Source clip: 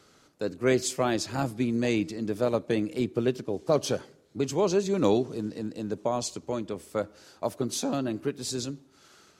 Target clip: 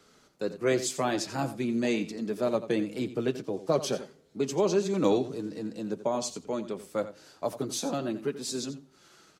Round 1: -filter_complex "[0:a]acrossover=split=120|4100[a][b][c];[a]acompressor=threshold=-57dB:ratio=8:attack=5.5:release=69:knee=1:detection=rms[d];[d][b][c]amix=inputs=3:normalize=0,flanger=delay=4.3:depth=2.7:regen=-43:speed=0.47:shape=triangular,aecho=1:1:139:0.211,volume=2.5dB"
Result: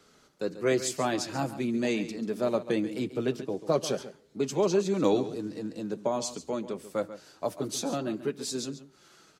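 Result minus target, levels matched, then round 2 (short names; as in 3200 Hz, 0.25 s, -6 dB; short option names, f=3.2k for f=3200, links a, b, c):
echo 52 ms late
-filter_complex "[0:a]acrossover=split=120|4100[a][b][c];[a]acompressor=threshold=-57dB:ratio=8:attack=5.5:release=69:knee=1:detection=rms[d];[d][b][c]amix=inputs=3:normalize=0,flanger=delay=4.3:depth=2.7:regen=-43:speed=0.47:shape=triangular,aecho=1:1:87:0.211,volume=2.5dB"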